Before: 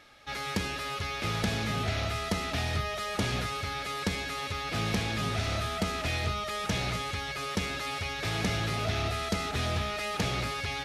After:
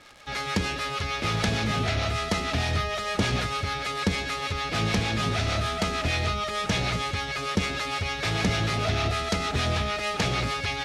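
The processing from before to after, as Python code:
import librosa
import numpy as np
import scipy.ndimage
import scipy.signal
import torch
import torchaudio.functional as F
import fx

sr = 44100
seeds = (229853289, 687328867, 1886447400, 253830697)

y = fx.harmonic_tremolo(x, sr, hz=6.6, depth_pct=50, crossover_hz=560.0)
y = fx.dmg_crackle(y, sr, seeds[0], per_s=120.0, level_db=-43.0)
y = scipy.signal.sosfilt(scipy.signal.butter(2, 8900.0, 'lowpass', fs=sr, output='sos'), y)
y = y * librosa.db_to_amplitude(7.0)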